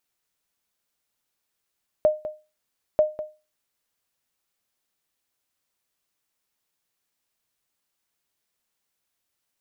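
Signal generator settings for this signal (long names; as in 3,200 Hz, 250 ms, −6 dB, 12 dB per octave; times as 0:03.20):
ping with an echo 613 Hz, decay 0.29 s, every 0.94 s, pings 2, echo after 0.20 s, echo −13 dB −10.5 dBFS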